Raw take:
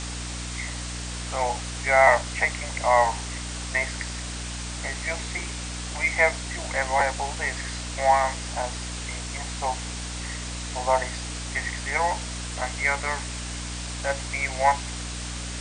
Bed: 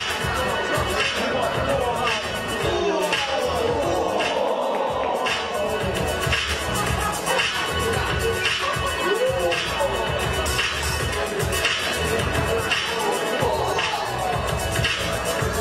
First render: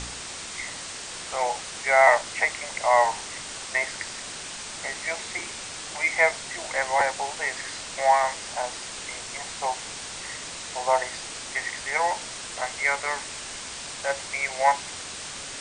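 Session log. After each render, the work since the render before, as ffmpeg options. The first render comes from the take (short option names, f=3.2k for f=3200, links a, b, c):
-af "bandreject=f=60:t=h:w=4,bandreject=f=120:t=h:w=4,bandreject=f=180:t=h:w=4,bandreject=f=240:t=h:w=4,bandreject=f=300:t=h:w=4"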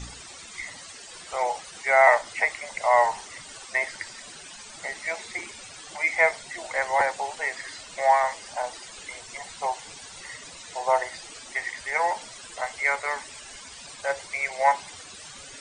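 -af "afftdn=nr=14:nf=-37"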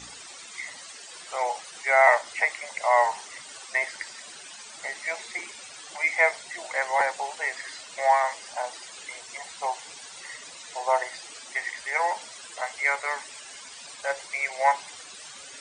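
-af "highpass=f=430:p=1"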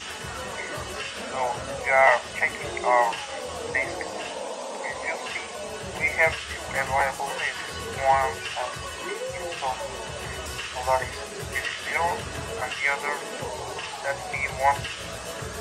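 -filter_complex "[1:a]volume=-11.5dB[a];[0:a][a]amix=inputs=2:normalize=0"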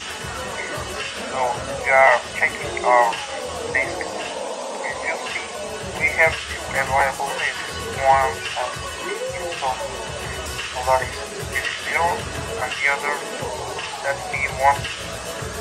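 -af "volume=5dB,alimiter=limit=-3dB:level=0:latency=1"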